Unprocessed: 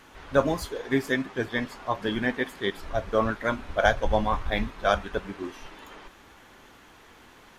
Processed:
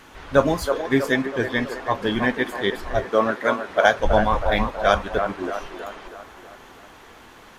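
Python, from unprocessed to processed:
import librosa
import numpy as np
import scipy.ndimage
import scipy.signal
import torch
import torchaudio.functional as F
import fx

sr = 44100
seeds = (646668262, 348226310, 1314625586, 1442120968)

y = fx.highpass(x, sr, hz=210.0, slope=12, at=(3.04, 4.0))
y = fx.echo_wet_bandpass(y, sr, ms=322, feedback_pct=52, hz=790.0, wet_db=-6)
y = y * 10.0 ** (5.0 / 20.0)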